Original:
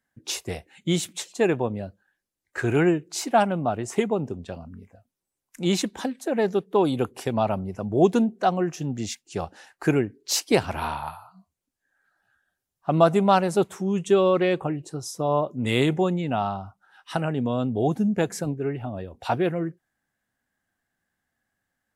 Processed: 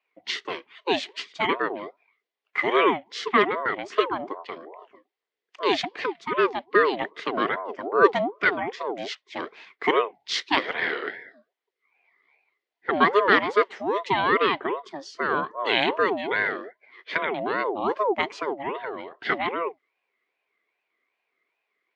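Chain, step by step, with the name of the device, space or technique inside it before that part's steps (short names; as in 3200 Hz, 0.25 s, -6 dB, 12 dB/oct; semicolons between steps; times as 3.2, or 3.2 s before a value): voice changer toy (ring modulator with a swept carrier 630 Hz, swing 35%, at 2.5 Hz; speaker cabinet 400–4300 Hz, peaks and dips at 410 Hz +7 dB, 580 Hz -5 dB, 850 Hz -8 dB, 1300 Hz -4 dB, 2000 Hz +8 dB, 3200 Hz +3 dB); gain +5 dB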